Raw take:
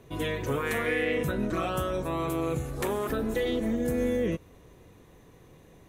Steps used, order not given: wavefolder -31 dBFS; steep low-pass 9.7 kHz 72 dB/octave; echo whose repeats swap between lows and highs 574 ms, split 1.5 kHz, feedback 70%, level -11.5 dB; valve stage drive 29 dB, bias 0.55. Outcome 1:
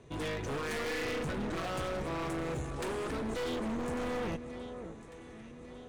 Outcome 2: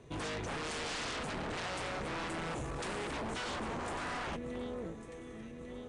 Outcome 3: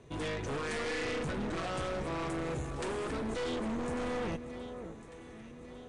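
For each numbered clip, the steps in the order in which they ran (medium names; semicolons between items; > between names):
steep low-pass > valve stage > echo whose repeats swap between lows and highs > wavefolder; echo whose repeats swap between lows and highs > wavefolder > valve stage > steep low-pass; valve stage > echo whose repeats swap between lows and highs > wavefolder > steep low-pass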